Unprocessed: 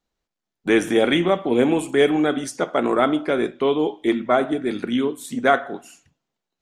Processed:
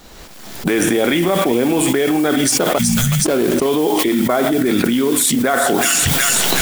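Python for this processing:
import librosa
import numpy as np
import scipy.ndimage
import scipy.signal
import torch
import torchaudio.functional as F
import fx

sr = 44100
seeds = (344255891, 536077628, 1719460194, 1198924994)

y = fx.median_filter(x, sr, points=25, at=(2.57, 3.66))
y = fx.recorder_agc(y, sr, target_db=-9.0, rise_db_per_s=31.0, max_gain_db=30)
y = fx.spec_erase(y, sr, start_s=2.78, length_s=0.48, low_hz=220.0, high_hz=5900.0)
y = fx.mod_noise(y, sr, seeds[0], snr_db=21)
y = fx.high_shelf(y, sr, hz=7600.0, db=4.0)
y = fx.notch(y, sr, hz=6300.0, q=29.0)
y = fx.echo_wet_highpass(y, sr, ms=372, feedback_pct=40, hz=2400.0, wet_db=-11)
y = fx.env_flatten(y, sr, amount_pct=100)
y = y * librosa.db_to_amplitude(-3.5)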